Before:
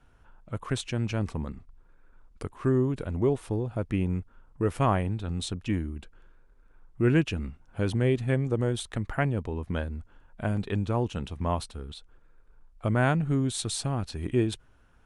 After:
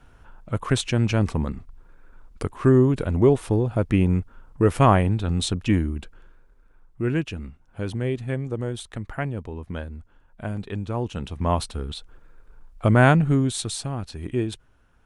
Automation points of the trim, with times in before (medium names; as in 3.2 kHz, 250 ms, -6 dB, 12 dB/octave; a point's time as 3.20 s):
5.92 s +8 dB
7.07 s -1.5 dB
10.83 s -1.5 dB
11.76 s +8.5 dB
13.14 s +8.5 dB
13.86 s 0 dB